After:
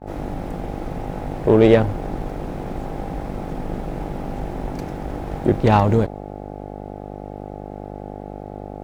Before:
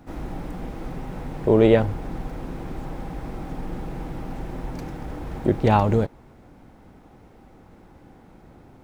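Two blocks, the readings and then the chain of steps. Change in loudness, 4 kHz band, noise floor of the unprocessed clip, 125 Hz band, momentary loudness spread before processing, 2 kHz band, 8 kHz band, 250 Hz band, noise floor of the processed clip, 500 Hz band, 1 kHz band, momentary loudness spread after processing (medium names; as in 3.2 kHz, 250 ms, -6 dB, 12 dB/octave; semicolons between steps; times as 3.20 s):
+3.5 dB, +3.5 dB, -51 dBFS, +3.5 dB, 17 LU, +3.5 dB, no reading, +3.5 dB, -34 dBFS, +3.5 dB, +3.5 dB, 19 LU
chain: mains buzz 50 Hz, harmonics 17, -36 dBFS -1 dB/octave; Chebyshev shaper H 8 -30 dB, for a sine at -4 dBFS; expander -33 dBFS; trim +3 dB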